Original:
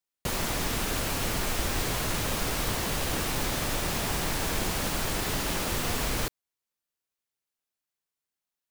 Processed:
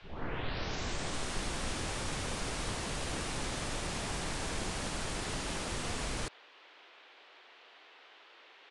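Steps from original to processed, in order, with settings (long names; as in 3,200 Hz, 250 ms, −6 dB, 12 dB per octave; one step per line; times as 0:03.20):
turntable start at the beginning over 2.41 s
downsampling to 22,050 Hz
noise in a band 350–3,500 Hz −51 dBFS
level −7 dB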